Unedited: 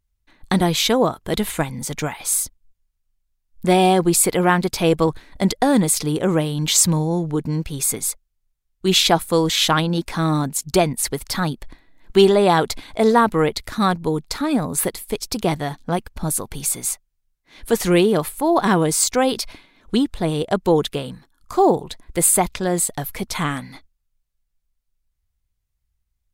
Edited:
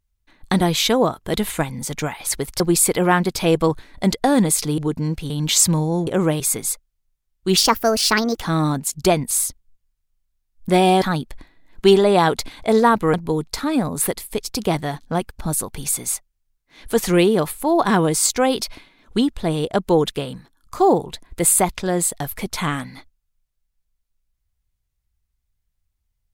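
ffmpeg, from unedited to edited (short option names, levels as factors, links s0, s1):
-filter_complex "[0:a]asplit=12[s0][s1][s2][s3][s4][s5][s6][s7][s8][s9][s10][s11];[s0]atrim=end=2.272[s12];[s1]atrim=start=10.998:end=11.332[s13];[s2]atrim=start=3.978:end=6.162[s14];[s3]atrim=start=7.258:end=7.782[s15];[s4]atrim=start=6.488:end=7.262[s16];[s5]atrim=start=6.158:end=6.492[s17];[s6]atrim=start=7.778:end=8.954[s18];[s7]atrim=start=8.95:end=10.11,asetpts=PTS-STARTPTS,asetrate=60417,aresample=44100,atrim=end_sample=37340,asetpts=PTS-STARTPTS[s19];[s8]atrim=start=10.106:end=11.002[s20];[s9]atrim=start=2.268:end=3.982[s21];[s10]atrim=start=11.328:end=13.452[s22];[s11]atrim=start=13.908[s23];[s12][s13]acrossfade=d=0.004:c1=hsin:c2=hsin[s24];[s24][s14]acrossfade=d=0.004:c1=hsin:c2=hsin[s25];[s25][s15]acrossfade=d=0.004:c1=hsin:c2=hsin[s26];[s26][s16]acrossfade=d=0.004:c1=hsin:c2=hsin[s27];[s27][s17]acrossfade=d=0.004:c1=hsin:c2=hsin[s28];[s28][s18]acrossfade=d=0.004:c1=hsin:c2=hsin[s29];[s29][s19]acrossfade=d=0.004:c1=hsin:c2=hsin[s30];[s30][s20]acrossfade=d=0.004:c1=hsin:c2=hsin[s31];[s31][s21]acrossfade=d=0.004:c1=hsin:c2=hsin[s32];[s32][s22]acrossfade=d=0.004:c1=hsin:c2=hsin[s33];[s33][s23]acrossfade=d=0.004:c1=hsin:c2=hsin"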